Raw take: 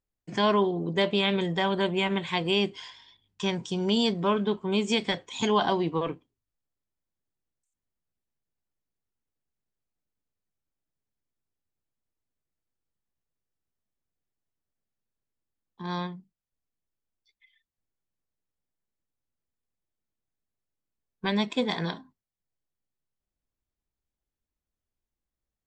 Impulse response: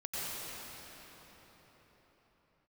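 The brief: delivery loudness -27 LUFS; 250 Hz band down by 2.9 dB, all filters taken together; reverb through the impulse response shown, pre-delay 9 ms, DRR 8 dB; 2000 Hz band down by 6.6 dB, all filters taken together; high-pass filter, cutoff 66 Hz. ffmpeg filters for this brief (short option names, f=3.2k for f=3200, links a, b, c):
-filter_complex "[0:a]highpass=66,equalizer=f=250:t=o:g=-4,equalizer=f=2k:t=o:g=-8.5,asplit=2[a][b];[1:a]atrim=start_sample=2205,adelay=9[c];[b][c]afir=irnorm=-1:irlink=0,volume=-13dB[d];[a][d]amix=inputs=2:normalize=0,volume=3dB"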